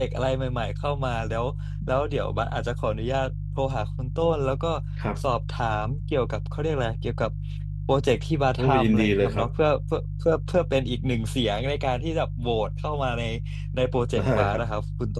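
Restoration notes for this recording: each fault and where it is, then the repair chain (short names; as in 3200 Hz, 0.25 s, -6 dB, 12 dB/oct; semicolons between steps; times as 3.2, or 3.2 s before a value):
hum 50 Hz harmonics 3 -31 dBFS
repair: de-hum 50 Hz, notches 3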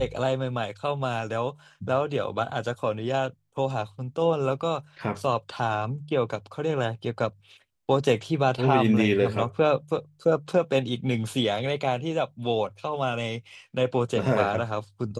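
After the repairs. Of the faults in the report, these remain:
none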